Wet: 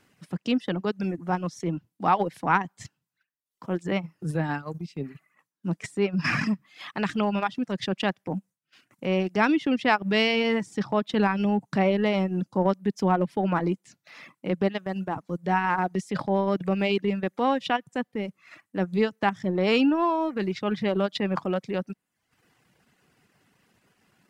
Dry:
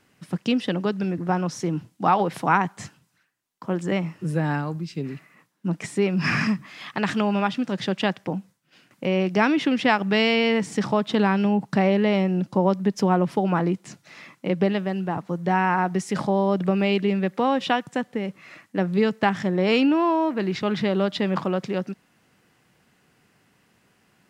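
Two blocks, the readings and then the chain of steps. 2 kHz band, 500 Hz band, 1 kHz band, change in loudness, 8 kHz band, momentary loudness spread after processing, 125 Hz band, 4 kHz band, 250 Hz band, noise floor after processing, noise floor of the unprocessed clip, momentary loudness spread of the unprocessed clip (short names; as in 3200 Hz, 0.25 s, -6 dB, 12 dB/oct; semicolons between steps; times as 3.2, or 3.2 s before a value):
-2.5 dB, -3.0 dB, -2.5 dB, -3.0 dB, n/a, 11 LU, -4.0 dB, -3.0 dB, -3.5 dB, -82 dBFS, -64 dBFS, 11 LU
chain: reverb removal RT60 0.76 s; transient shaper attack -5 dB, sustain -9 dB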